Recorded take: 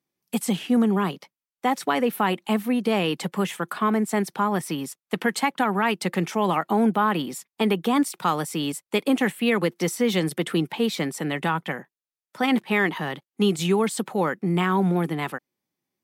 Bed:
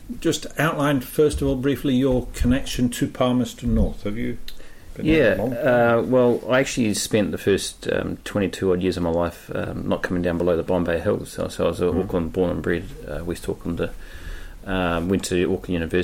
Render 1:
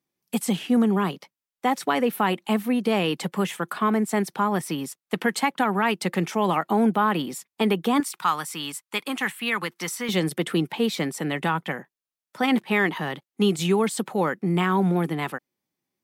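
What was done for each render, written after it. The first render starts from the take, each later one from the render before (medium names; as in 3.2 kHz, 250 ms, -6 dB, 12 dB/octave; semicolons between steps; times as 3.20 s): 8.00–10.09 s: resonant low shelf 770 Hz -9 dB, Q 1.5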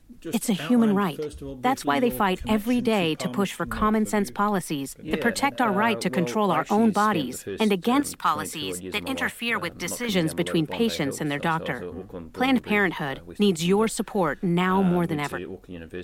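add bed -14.5 dB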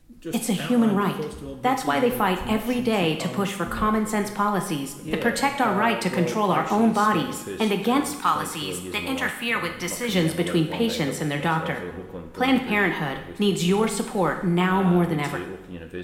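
two-slope reverb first 0.78 s, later 2.4 s, DRR 4.5 dB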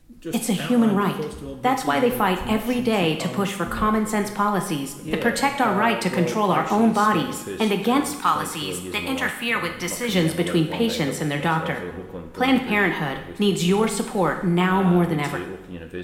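trim +1.5 dB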